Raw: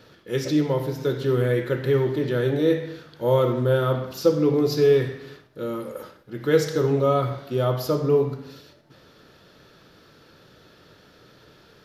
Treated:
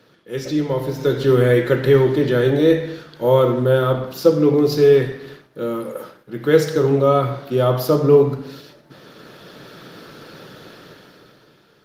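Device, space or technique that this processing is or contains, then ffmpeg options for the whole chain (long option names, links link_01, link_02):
video call: -af "highpass=frequency=120:width=0.5412,highpass=frequency=120:width=1.3066,dynaudnorm=framelen=150:gausssize=13:maxgain=15.5dB,volume=-1dB" -ar 48000 -c:a libopus -b:a 32k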